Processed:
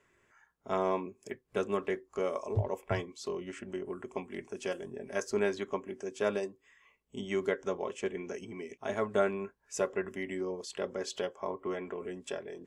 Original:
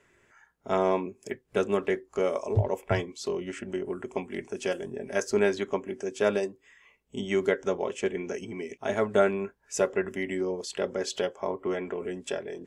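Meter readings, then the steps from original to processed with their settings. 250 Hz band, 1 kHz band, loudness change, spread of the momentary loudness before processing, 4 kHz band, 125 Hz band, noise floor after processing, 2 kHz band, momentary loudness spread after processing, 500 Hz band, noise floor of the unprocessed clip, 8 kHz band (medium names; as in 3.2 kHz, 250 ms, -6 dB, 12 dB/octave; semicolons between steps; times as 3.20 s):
-6.0 dB, -4.5 dB, -6.0 dB, 9 LU, -6.0 dB, -6.0 dB, -73 dBFS, -6.0 dB, 9 LU, -6.0 dB, -68 dBFS, -6.0 dB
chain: peaking EQ 1.1 kHz +6 dB 0.2 oct; trim -6 dB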